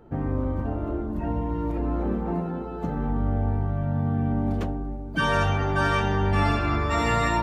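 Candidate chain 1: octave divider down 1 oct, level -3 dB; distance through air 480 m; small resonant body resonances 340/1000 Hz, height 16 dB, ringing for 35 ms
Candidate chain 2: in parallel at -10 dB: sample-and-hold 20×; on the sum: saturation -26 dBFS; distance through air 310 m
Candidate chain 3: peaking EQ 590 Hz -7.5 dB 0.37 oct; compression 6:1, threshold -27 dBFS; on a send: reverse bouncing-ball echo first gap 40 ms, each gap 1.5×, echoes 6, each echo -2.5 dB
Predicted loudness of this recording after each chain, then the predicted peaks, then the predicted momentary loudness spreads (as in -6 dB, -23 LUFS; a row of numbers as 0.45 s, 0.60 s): -20.5 LUFS, -31.0 LUFS, -28.0 LUFS; -6.5 dBFS, -26.0 dBFS, -14.0 dBFS; 5 LU, 3 LU, 3 LU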